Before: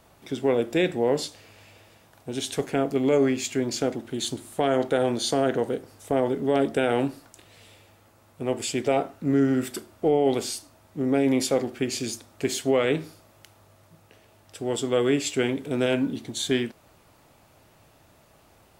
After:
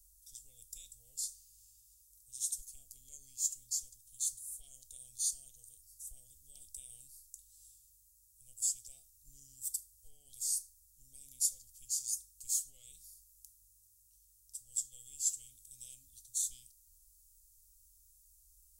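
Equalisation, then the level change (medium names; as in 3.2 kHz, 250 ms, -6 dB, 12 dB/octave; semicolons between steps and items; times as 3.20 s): inverse Chebyshev band-stop 190–1800 Hz, stop band 70 dB; high-order bell 530 Hz +12 dB 2.8 oct; +2.5 dB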